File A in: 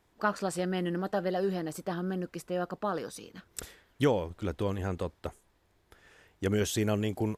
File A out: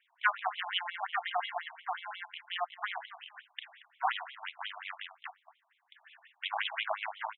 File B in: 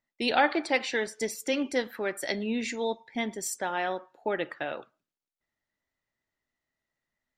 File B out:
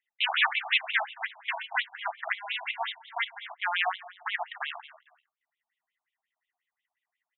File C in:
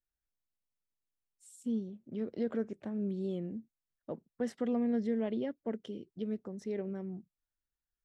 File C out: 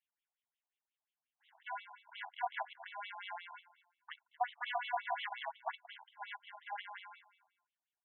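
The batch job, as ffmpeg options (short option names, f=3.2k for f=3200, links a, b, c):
-filter_complex "[0:a]bandreject=f=1.3k:w=8.6,aeval=exprs='0.335*(cos(1*acos(clip(val(0)/0.335,-1,1)))-cos(1*PI/2))+0.0944*(cos(5*acos(clip(val(0)/0.335,-1,1)))-cos(5*PI/2))+0.0944*(cos(6*acos(clip(val(0)/0.335,-1,1)))-cos(6*PI/2))+0.0531*(cos(7*acos(clip(val(0)/0.335,-1,1)))-cos(7*PI/2))':c=same,equalizer=f=3.1k:t=o:w=0.67:g=6,asplit=2[a][b];[b]acrusher=samples=36:mix=1:aa=0.000001,volume=-3.5dB[c];[a][c]amix=inputs=2:normalize=0,asoftclip=type=hard:threshold=-8.5dB,aecho=1:1:229|458:0.141|0.0297,aresample=8000,aresample=44100,afftfilt=real='re*between(b*sr/1024,870*pow(3000/870,0.5+0.5*sin(2*PI*5.6*pts/sr))/1.41,870*pow(3000/870,0.5+0.5*sin(2*PI*5.6*pts/sr))*1.41)':imag='im*between(b*sr/1024,870*pow(3000/870,0.5+0.5*sin(2*PI*5.6*pts/sr))/1.41,870*pow(3000/870,0.5+0.5*sin(2*PI*5.6*pts/sr))*1.41)':win_size=1024:overlap=0.75,volume=2dB"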